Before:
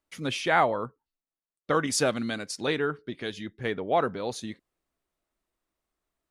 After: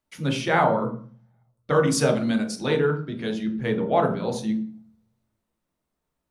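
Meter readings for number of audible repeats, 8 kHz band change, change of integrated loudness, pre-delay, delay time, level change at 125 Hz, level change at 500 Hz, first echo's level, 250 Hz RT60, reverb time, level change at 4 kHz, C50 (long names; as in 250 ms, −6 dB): no echo audible, +1.0 dB, +4.5 dB, 14 ms, no echo audible, +10.5 dB, +5.0 dB, no echo audible, 0.70 s, 0.40 s, +0.5 dB, 9.5 dB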